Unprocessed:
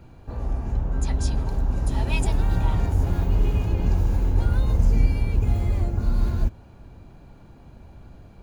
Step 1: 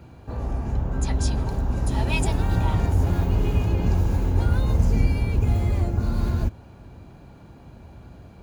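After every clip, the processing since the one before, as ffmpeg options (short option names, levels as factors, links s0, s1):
-af "highpass=55,volume=1.41"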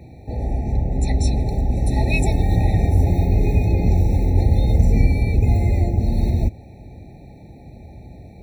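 -af "afftfilt=real='re*eq(mod(floor(b*sr/1024/890),2),0)':imag='im*eq(mod(floor(b*sr/1024/890),2),0)':win_size=1024:overlap=0.75,volume=1.68"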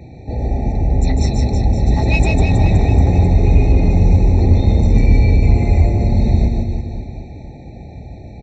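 -filter_complex "[0:a]asoftclip=type=tanh:threshold=0.266,asplit=2[s0][s1];[s1]aecho=0:1:150|322.5|520.9|749|1011:0.631|0.398|0.251|0.158|0.1[s2];[s0][s2]amix=inputs=2:normalize=0,aresample=16000,aresample=44100,volume=1.68"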